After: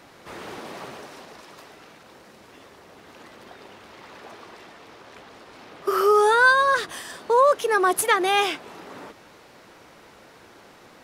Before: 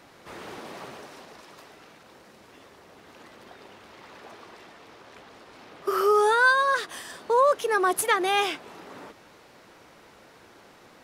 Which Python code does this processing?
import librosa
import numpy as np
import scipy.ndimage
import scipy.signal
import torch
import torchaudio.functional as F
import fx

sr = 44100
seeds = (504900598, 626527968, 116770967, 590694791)

y = fx.low_shelf(x, sr, hz=180.0, db=11.0, at=(6.34, 6.92))
y = y * 10.0 ** (3.0 / 20.0)